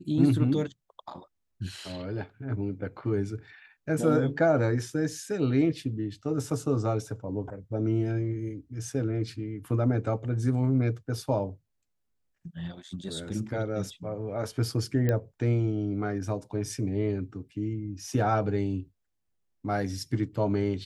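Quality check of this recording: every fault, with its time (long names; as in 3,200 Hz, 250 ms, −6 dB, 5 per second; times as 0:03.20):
0:15.09: click −15 dBFS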